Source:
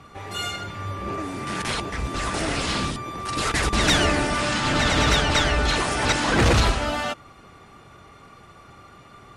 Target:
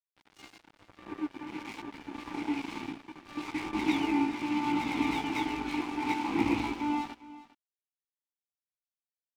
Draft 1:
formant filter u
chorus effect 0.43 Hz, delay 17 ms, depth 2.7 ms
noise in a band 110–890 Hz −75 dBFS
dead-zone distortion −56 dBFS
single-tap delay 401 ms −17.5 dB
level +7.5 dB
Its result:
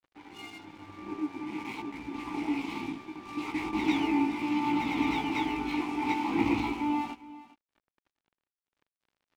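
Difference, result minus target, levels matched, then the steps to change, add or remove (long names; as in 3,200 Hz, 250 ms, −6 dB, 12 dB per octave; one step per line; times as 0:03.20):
dead-zone distortion: distortion −9 dB
change: dead-zone distortion −46.5 dBFS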